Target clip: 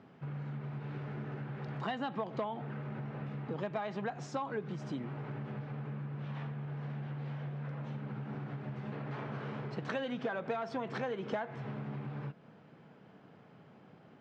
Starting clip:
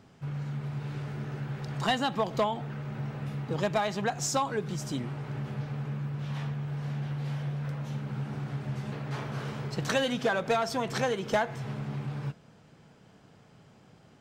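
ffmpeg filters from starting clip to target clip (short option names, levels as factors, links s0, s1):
-af "lowshelf=f=240:g=4,acompressor=threshold=0.0224:ratio=5,highpass=180,lowpass=2500"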